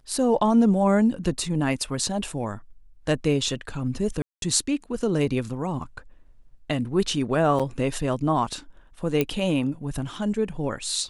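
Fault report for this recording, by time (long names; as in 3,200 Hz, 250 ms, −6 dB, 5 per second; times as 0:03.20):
0:04.22–0:04.42: drop-out 202 ms
0:07.59–0:07.60: drop-out 6.4 ms
0:09.21: click −9 dBFS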